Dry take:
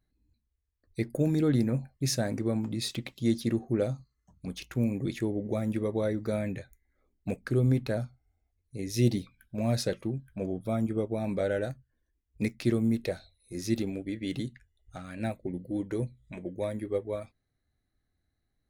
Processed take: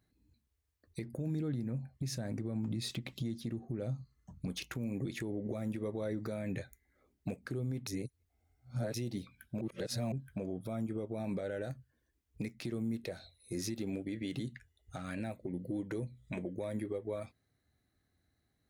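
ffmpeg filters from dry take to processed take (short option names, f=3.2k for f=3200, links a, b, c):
-filter_complex "[0:a]asettb=1/sr,asplit=3[a][b][c];[a]atrim=end=1.034[d];[b]atrim=start=1.03:end=4.47,asetpts=PTS-STARTPTS,afade=t=in:d=0.004:c=qsin,afade=t=out:st=3.436:d=0.004:c=qsin,bass=f=250:g=7,treble=f=4k:g=-2[e];[c]atrim=start=4.466[f];[d][e]acrossfade=d=0.004:c1=hsin:c2=qsin[g];[g][f]acrossfade=d=0.004:c1=qsin:c2=hsin,asplit=5[h][i][j][k][l];[h]atrim=end=7.872[m];[i]atrim=start=7.868:end=8.942,asetpts=PTS-STARTPTS,areverse[n];[j]atrim=start=8.938:end=9.612[o];[k]atrim=start=9.608:end=10.122,asetpts=PTS-STARTPTS,areverse[p];[l]atrim=start=10.118[q];[m][n]acrossfade=d=0.004:c1=hsin:c2=hsin[r];[r][o]acrossfade=d=0.004:c1=hsin:c2=hsin[s];[s][p]acrossfade=d=0.004:c1=hsin:c2=hsin[t];[t][q]acrossfade=d=0.004:c1=hsin:c2=hsin,highpass=72,acompressor=threshold=-33dB:ratio=6,alimiter=level_in=8.5dB:limit=-24dB:level=0:latency=1:release=167,volume=-8.5dB,volume=4dB"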